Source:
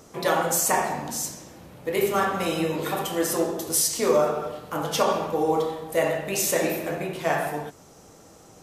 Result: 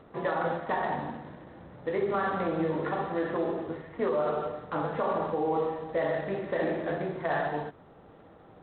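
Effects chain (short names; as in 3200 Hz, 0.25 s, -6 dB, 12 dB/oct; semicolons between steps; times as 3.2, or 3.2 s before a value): elliptic low-pass 1900 Hz, stop band 60 dB; limiter -18.5 dBFS, peak gain reduction 9.5 dB; gain -1.5 dB; G.726 24 kbps 8000 Hz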